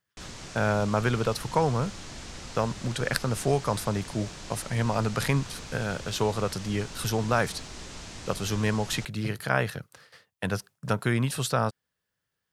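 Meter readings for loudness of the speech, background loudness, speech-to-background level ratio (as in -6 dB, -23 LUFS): -29.0 LUFS, -41.0 LUFS, 12.0 dB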